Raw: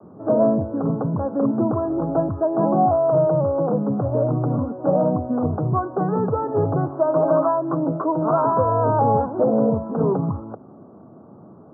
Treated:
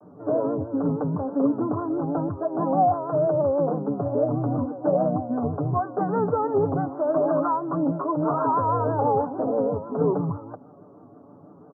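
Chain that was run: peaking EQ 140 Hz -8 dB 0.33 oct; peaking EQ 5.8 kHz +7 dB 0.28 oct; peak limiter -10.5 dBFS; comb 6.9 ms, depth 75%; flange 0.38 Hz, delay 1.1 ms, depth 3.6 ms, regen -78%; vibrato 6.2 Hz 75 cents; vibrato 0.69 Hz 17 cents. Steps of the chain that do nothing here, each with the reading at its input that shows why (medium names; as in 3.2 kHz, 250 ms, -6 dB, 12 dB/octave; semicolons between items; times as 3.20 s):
peaking EQ 5.8 kHz: input has nothing above 1.4 kHz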